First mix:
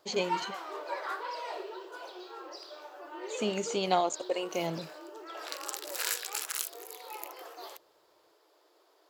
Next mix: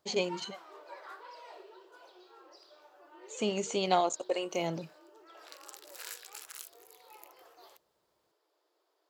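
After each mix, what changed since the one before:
background -11.5 dB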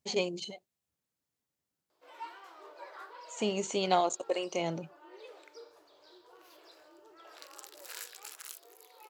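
background: entry +1.90 s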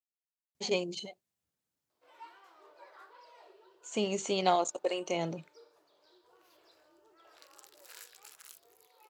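speech: entry +0.55 s; background -7.0 dB

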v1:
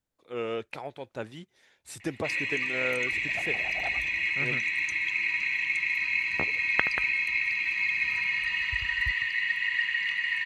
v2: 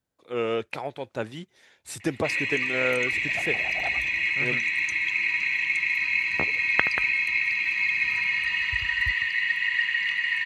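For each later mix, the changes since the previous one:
first voice +5.5 dB; background +3.0 dB; master: add HPF 48 Hz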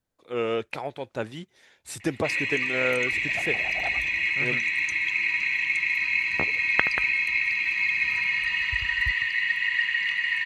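master: remove HPF 48 Hz

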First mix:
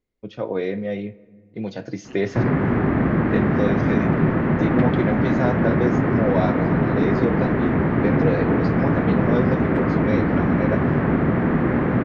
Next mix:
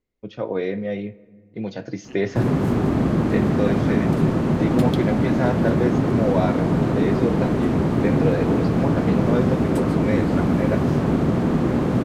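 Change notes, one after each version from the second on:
background: remove synth low-pass 1900 Hz, resonance Q 2.7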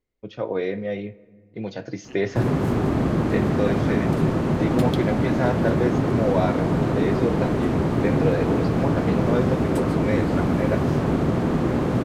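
master: add bell 210 Hz -3.5 dB 1 oct

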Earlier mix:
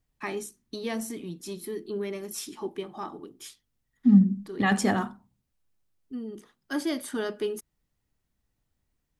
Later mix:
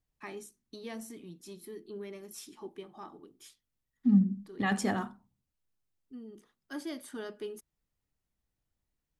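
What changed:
first voice -10.0 dB; second voice -6.0 dB

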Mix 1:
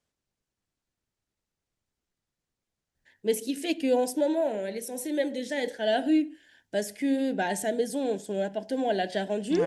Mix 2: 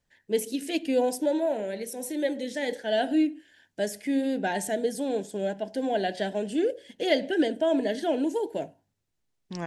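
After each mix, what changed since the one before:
first voice: entry -2.95 s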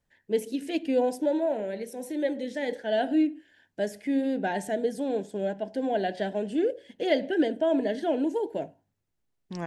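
second voice: remove air absorption 58 m; master: add high shelf 3700 Hz -10.5 dB

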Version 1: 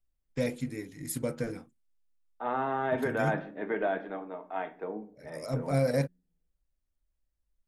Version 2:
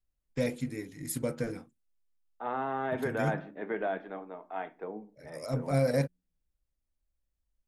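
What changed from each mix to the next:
second voice: send -10.0 dB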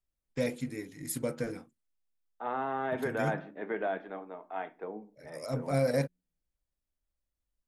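master: add low shelf 130 Hz -6 dB

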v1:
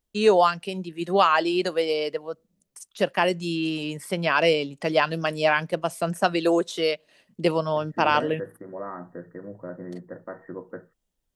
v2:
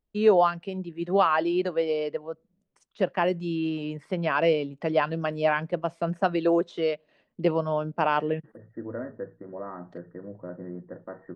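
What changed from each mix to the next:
second voice: entry +0.80 s; master: add tape spacing loss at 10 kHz 31 dB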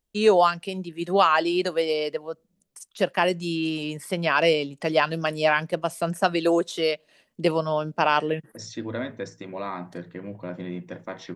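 second voice: remove rippled Chebyshev low-pass 1900 Hz, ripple 6 dB; master: remove tape spacing loss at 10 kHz 31 dB

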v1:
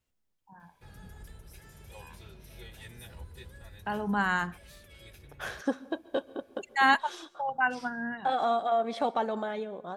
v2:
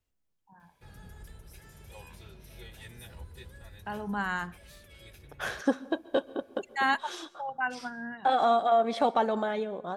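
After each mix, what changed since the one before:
first voice -4.0 dB; second voice +3.5 dB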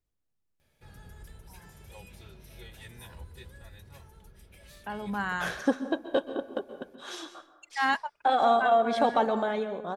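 first voice: entry +1.00 s; second voice: send +10.0 dB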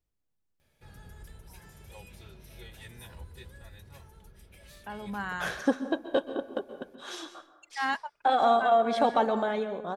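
first voice -3.5 dB

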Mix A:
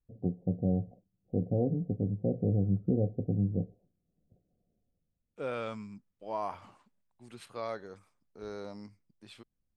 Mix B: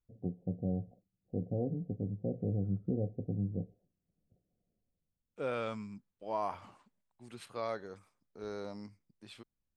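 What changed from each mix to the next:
first voice -5.5 dB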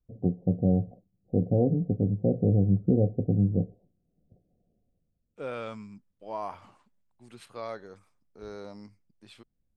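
first voice +11.0 dB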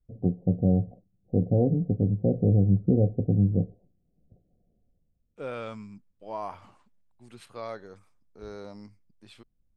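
master: add low shelf 76 Hz +7 dB

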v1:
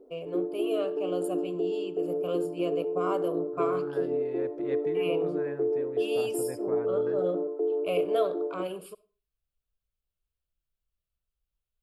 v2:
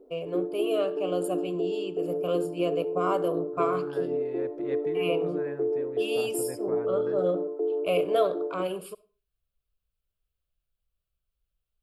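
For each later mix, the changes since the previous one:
first voice +4.0 dB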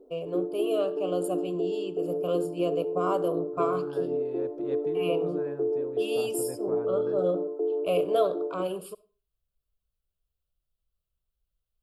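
master: add bell 2000 Hz -12 dB 0.56 oct

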